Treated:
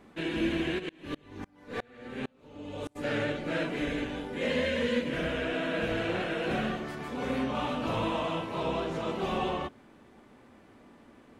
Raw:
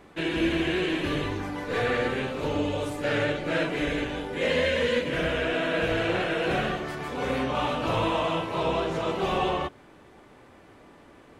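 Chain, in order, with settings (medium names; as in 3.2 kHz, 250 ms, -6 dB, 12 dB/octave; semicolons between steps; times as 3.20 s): peaking EQ 230 Hz +9 dB 0.43 oct; 0.78–2.95 s: sawtooth tremolo in dB swelling 4.5 Hz -> 1.3 Hz, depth 33 dB; trim -5.5 dB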